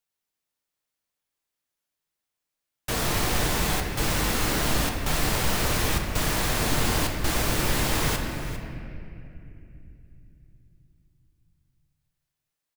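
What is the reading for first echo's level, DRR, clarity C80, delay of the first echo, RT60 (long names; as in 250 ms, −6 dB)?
−14.0 dB, 2.0 dB, 4.5 dB, 401 ms, 2.7 s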